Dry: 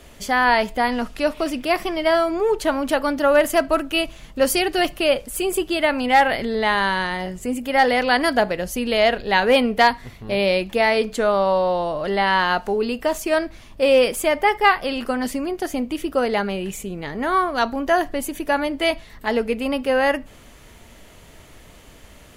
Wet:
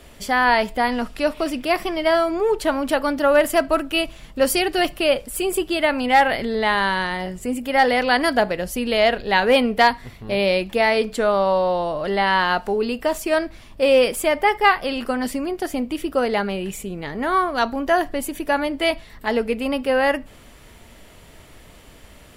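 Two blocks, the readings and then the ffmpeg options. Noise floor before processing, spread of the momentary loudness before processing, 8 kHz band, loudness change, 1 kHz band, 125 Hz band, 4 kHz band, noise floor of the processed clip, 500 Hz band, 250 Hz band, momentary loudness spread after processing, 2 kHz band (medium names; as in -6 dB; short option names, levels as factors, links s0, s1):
-46 dBFS, 9 LU, -0.5 dB, 0.0 dB, 0.0 dB, 0.0 dB, 0.0 dB, -46 dBFS, 0.0 dB, 0.0 dB, 9 LU, 0.0 dB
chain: -af "bandreject=f=6400:w=13"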